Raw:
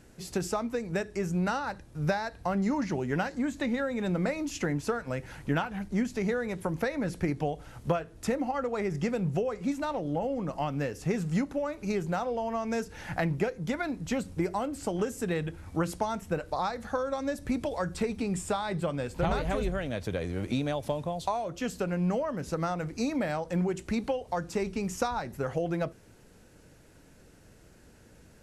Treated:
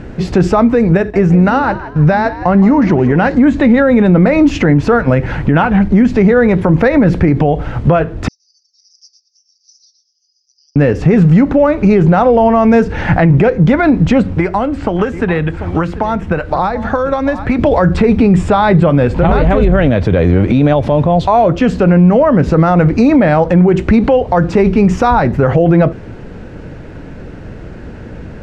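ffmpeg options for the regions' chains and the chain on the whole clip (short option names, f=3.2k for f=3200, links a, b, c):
-filter_complex "[0:a]asettb=1/sr,asplit=3[a][b][c];[a]atrim=end=0.974[d];[b]atrim=start=0.97:end=3.22,asetpts=PTS-STARTPTS,afade=t=in:d=0.004:c=qsin,afade=t=out:st=2.246:d=0.004:c=qsin,agate=range=-10dB:threshold=-46dB:ratio=16:release=100:detection=peak,acompressor=threshold=-42dB:ratio=1.5:attack=3.2:release=140:knee=1:detection=peak,asplit=4[e][f][g][h];[f]adelay=165,afreqshift=78,volume=-14dB[i];[g]adelay=330,afreqshift=156,volume=-22.9dB[j];[h]adelay=495,afreqshift=234,volume=-31.7dB[k];[e][i][j][k]amix=inputs=4:normalize=0,atrim=end_sample=99225[l];[c]atrim=start=3.216[m];[d][l]acrossfade=d=0.004:c1=hsin:c2=qsin[n];[n][m]acrossfade=d=0.004:c1=qsin:c2=hsin,asettb=1/sr,asplit=3[o][p][q];[o]atrim=end=8.284[r];[p]atrim=start=8.28:end=10.76,asetpts=PTS-STARTPTS,afade=t=in:d=0.004:c=qsin,afade=t=out:st=2.476:d=0.004:c=qsin,asuperpass=centerf=5400:order=8:qfactor=3.8,aecho=1:1:2.4:0.44,atrim=end_sample=109368,aecho=1:1:118:0.335,atrim=end_sample=109368[s];[q]atrim=start=10.756[t];[r][s]acrossfade=d=0.004:c1=hsin:c2=qsin[u];[u][t]acrossfade=d=0.004:c1=qsin:c2=hsin,asettb=1/sr,asplit=3[v][w][x];[v]atrim=end=14.224[y];[w]atrim=start=14.22:end=17.59,asetpts=PTS-STARTPTS,afade=t=in:d=0.004:c=qsin,afade=t=out:st=3.366:d=0.004:c=qsin,aecho=1:1:739:0.141,atrim=end_sample=148617,acrossover=split=82|800|3500[z][aa][ab][ac];[z]acompressor=threshold=-55dB:ratio=3[ad];[aa]acompressor=threshold=-44dB:ratio=3[ae];[ab]acompressor=threshold=-43dB:ratio=3[af];[ac]acompressor=threshold=-58dB:ratio=3[ag];[ad][ae][af][ag]amix=inputs=4:normalize=0[ah];[x]atrim=start=17.586[ai];[y][ah]acrossfade=d=0.004:c1=hsin:c2=qsin[aj];[aj][ai]acrossfade=d=0.004:c1=qsin:c2=hsin,lowpass=2.5k,lowshelf=f=460:g=5,alimiter=level_in=24.5dB:limit=-1dB:release=50:level=0:latency=1,volume=-1dB"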